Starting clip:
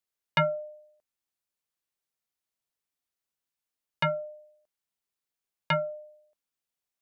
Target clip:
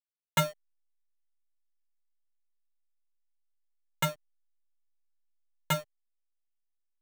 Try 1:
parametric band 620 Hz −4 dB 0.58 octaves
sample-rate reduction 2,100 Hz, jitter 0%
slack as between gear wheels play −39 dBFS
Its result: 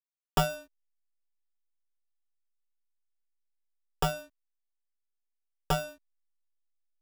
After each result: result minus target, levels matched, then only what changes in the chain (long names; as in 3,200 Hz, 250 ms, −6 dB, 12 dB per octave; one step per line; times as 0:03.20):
slack as between gear wheels: distortion −9 dB; sample-rate reduction: distortion +8 dB
change: slack as between gear wheels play −27.5 dBFS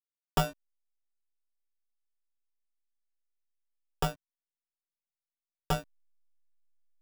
sample-rate reduction: distortion +8 dB
change: sample-rate reduction 5,000 Hz, jitter 0%